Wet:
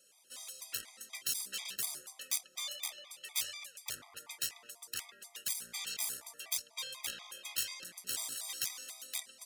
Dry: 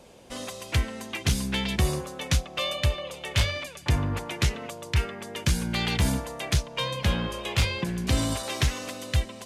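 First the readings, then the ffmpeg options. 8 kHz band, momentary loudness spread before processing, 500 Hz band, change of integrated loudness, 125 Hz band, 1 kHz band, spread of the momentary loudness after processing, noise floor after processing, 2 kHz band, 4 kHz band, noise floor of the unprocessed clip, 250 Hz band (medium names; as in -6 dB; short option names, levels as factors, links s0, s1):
-2.0 dB, 7 LU, -26.5 dB, -10.5 dB, under -40 dB, -20.5 dB, 9 LU, -65 dBFS, -14.5 dB, -9.5 dB, -44 dBFS, -34.5 dB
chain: -af "aeval=exprs='0.178*(cos(1*acos(clip(val(0)/0.178,-1,1)))-cos(1*PI/2))+0.0562*(cos(3*acos(clip(val(0)/0.178,-1,1)))-cos(3*PI/2))+0.0501*(cos(4*acos(clip(val(0)/0.178,-1,1)))-cos(4*PI/2))+0.0355*(cos(5*acos(clip(val(0)/0.178,-1,1)))-cos(5*PI/2))':c=same,aderivative,afftfilt=real='re*gt(sin(2*PI*4.1*pts/sr)*(1-2*mod(floor(b*sr/1024/640),2)),0)':imag='im*gt(sin(2*PI*4.1*pts/sr)*(1-2*mod(floor(b*sr/1024/640),2)),0)':win_size=1024:overlap=0.75,volume=0.891"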